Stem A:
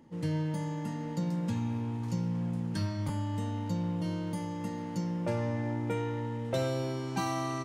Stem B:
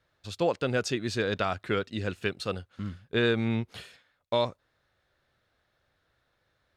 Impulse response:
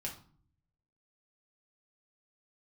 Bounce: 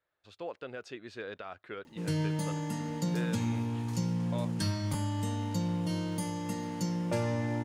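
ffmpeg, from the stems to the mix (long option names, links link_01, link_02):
-filter_complex "[0:a]highshelf=frequency=3400:gain=9.5,adelay=1850,volume=0.5dB[link_01];[1:a]bass=frequency=250:gain=-11,treble=frequency=4000:gain=-12,alimiter=limit=-19.5dB:level=0:latency=1:release=89,volume=-10dB[link_02];[link_01][link_02]amix=inputs=2:normalize=0"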